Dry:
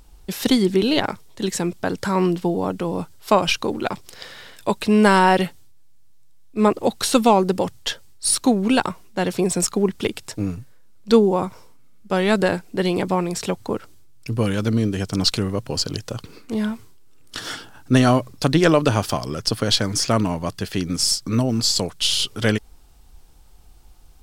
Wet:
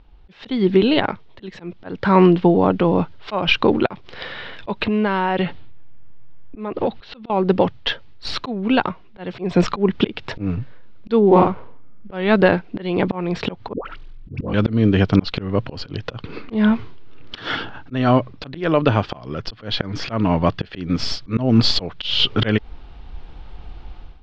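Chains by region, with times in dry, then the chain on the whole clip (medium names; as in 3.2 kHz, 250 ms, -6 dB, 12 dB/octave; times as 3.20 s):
4.84–7.30 s: level-controlled noise filter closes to 1.9 kHz, open at -15 dBFS + low-pass 5.6 kHz 24 dB/octave + compression 12:1, threshold -28 dBFS
11.27–12.14 s: median filter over 15 samples + doubling 45 ms -2 dB
13.73–14.54 s: ring modulator 21 Hz + phase dispersion highs, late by 121 ms, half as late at 730 Hz
whole clip: inverse Chebyshev low-pass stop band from 10 kHz, stop band 60 dB; slow attack 284 ms; level rider gain up to 15 dB; trim -1 dB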